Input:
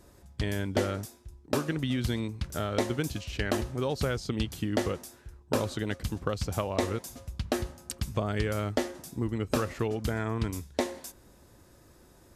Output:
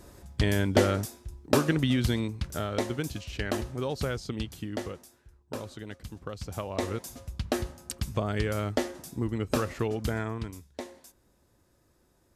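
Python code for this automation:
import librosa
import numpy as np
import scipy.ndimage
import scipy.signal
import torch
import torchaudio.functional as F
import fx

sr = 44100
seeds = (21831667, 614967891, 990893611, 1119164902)

y = fx.gain(x, sr, db=fx.line((1.72, 5.5), (2.82, -1.5), (4.14, -1.5), (5.19, -9.0), (6.17, -9.0), (7.07, 0.5), (10.18, 0.5), (10.62, -10.0)))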